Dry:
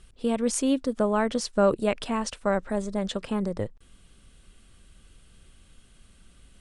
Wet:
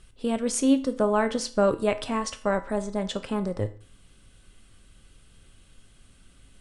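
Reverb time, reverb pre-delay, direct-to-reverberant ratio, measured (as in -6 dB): 0.45 s, 4 ms, 8.5 dB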